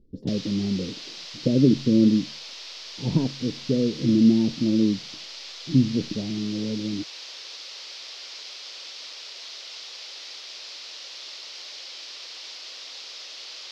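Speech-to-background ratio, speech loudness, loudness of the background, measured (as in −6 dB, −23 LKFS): 13.5 dB, −23.5 LKFS, −37.0 LKFS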